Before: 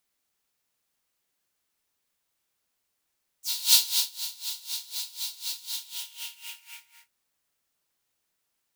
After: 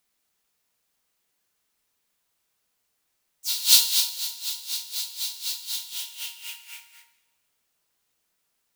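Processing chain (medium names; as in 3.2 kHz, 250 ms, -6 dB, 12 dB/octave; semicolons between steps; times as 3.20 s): two-slope reverb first 0.83 s, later 2.2 s, DRR 8.5 dB; trim +3 dB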